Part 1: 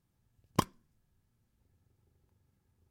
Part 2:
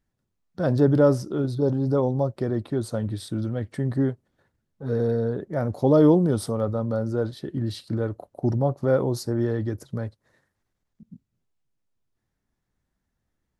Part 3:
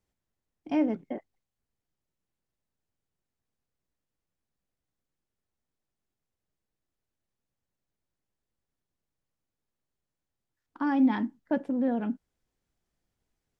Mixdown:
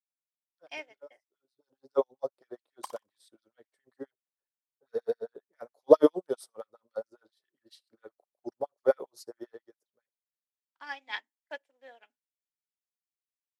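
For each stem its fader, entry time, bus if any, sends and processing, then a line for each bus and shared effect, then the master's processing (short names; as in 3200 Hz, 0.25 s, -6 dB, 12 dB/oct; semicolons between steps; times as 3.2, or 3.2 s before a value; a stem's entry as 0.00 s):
-2.0 dB, 2.25 s, no send, echo send -5 dB, stepped high-pass 3.9 Hz 700–1700 Hz
+1.0 dB, 0.00 s, no send, no echo send, LFO high-pass sine 7.4 Hz 420–2600 Hz; auto duck -20 dB, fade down 1.30 s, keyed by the third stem
0.0 dB, 0.00 s, no send, no echo send, HPF 550 Hz 24 dB/oct; resonant high shelf 1600 Hz +7.5 dB, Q 1.5; AGC gain up to 8 dB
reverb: off
echo: feedback echo 61 ms, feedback 41%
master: high shelf 2900 Hz +9.5 dB; upward expander 2.5:1, over -37 dBFS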